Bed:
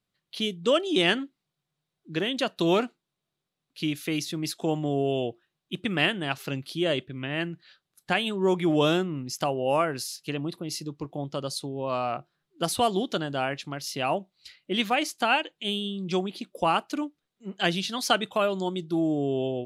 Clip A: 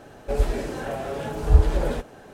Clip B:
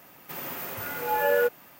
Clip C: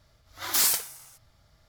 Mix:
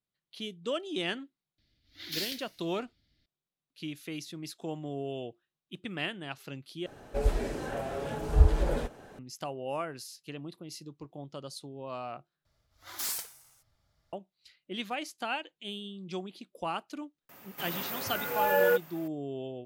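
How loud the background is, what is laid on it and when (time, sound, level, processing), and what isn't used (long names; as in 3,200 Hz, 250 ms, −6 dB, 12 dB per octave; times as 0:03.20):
bed −10.5 dB
0:01.58: mix in C −12 dB + drawn EQ curve 150 Hz 0 dB, 300 Hz +11 dB, 430 Hz −4 dB, 1,100 Hz −19 dB, 1,800 Hz +2 dB, 2,900 Hz +7 dB, 4,300 Hz +8 dB, 8,200 Hz −14 dB, 12,000 Hz −7 dB
0:06.86: overwrite with A −5 dB
0:12.45: overwrite with C −11.5 dB
0:17.29: mix in B −1.5 dB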